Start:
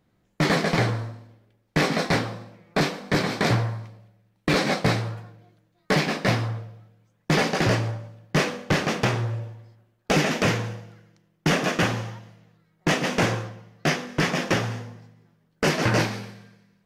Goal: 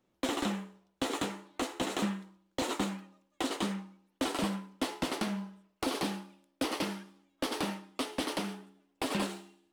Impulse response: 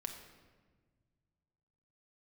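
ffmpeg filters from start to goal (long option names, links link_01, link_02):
-filter_complex "[0:a]acrossover=split=260[link_01][link_02];[link_02]acompressor=threshold=-24dB:ratio=6[link_03];[link_01][link_03]amix=inputs=2:normalize=0,asetrate=76440,aresample=44100,volume=-8.5dB"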